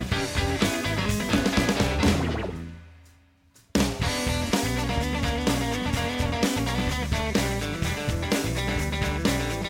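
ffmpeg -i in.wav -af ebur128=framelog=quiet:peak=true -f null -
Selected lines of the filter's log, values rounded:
Integrated loudness:
  I:         -25.7 LUFS
  Threshold: -36.1 LUFS
Loudness range:
  LRA:         1.6 LU
  Threshold: -46.4 LUFS
  LRA low:   -27.3 LUFS
  LRA high:  -25.7 LUFS
True peak:
  Peak:      -10.7 dBFS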